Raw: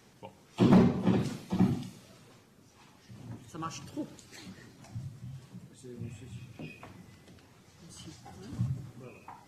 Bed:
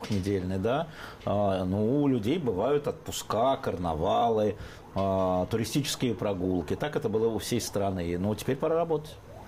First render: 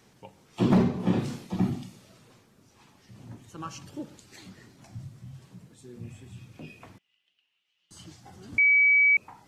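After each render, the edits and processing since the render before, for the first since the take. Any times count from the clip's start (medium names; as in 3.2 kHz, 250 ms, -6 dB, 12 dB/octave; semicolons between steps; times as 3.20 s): 0.97–1.47 s: doubling 28 ms -4 dB; 6.98–7.91 s: band-pass filter 2.9 kHz, Q 9.3; 8.58–9.17 s: bleep 2.28 kHz -16.5 dBFS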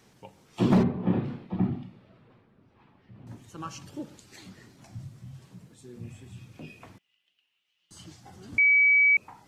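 0.83–3.27 s: distance through air 430 m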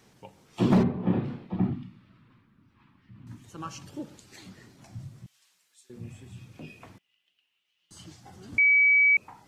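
1.73–3.44 s: high-order bell 560 Hz -13.5 dB 1.3 oct; 5.26–5.90 s: Bessel high-pass 2.7 kHz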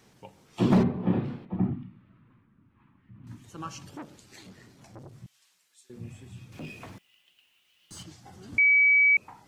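1.45–3.24 s: distance through air 430 m; 3.97–5.13 s: transformer saturation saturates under 940 Hz; 6.52–8.03 s: companding laws mixed up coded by mu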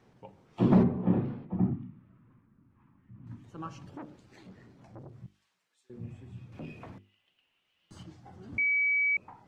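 low-pass 1.1 kHz 6 dB/octave; hum notches 50/100/150/200/250/300/350/400/450 Hz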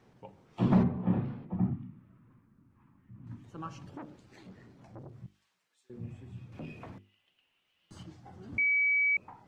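dynamic bell 370 Hz, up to -7 dB, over -43 dBFS, Q 1.1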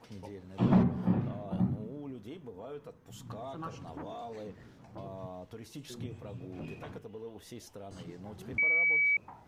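add bed -18 dB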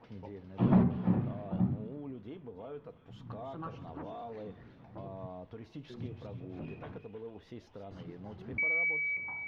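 distance through air 280 m; feedback echo behind a high-pass 324 ms, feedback 35%, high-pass 2 kHz, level -8 dB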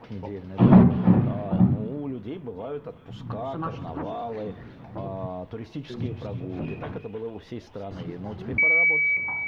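trim +11 dB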